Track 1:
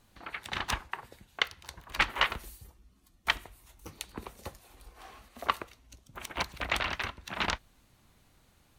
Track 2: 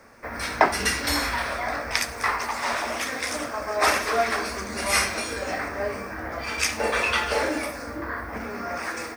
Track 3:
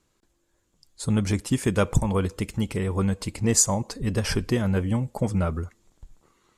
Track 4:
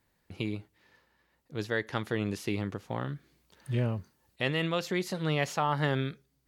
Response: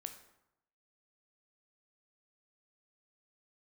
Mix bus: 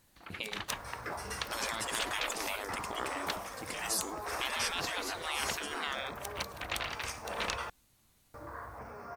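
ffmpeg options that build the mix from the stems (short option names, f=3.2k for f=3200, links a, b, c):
-filter_complex "[0:a]highshelf=f=4.8k:g=11.5,volume=-7.5dB[a];[1:a]equalizer=f=125:t=o:w=1:g=10,equalizer=f=250:t=o:w=1:g=-9,equalizer=f=500:t=o:w=1:g=3,equalizer=f=1k:t=o:w=1:g=7,equalizer=f=2k:t=o:w=1:g=-6,equalizer=f=4k:t=o:w=1:g=-5,adelay=450,volume=-14.5dB,asplit=3[b][c][d];[b]atrim=end=7.7,asetpts=PTS-STARTPTS,afade=t=out:st=7.696:d=0.004:c=hsin[e];[c]atrim=start=7.7:end=8.34,asetpts=PTS-STARTPTS,volume=0[f];[d]atrim=start=8.34,asetpts=PTS-STARTPTS,afade=t=in:d=0.004:c=hsin[g];[e][f][g]concat=n=3:v=0:a=1[h];[2:a]highpass=65,adelay=350,volume=-3dB[i];[3:a]volume=1.5dB,asplit=2[j][k];[k]apad=whole_len=305487[l];[i][l]sidechaingate=range=-33dB:threshold=-58dB:ratio=16:detection=peak[m];[a][h][m][j]amix=inputs=4:normalize=0,afftfilt=real='re*lt(hypot(re,im),0.0891)':imag='im*lt(hypot(re,im),0.0891)':win_size=1024:overlap=0.75"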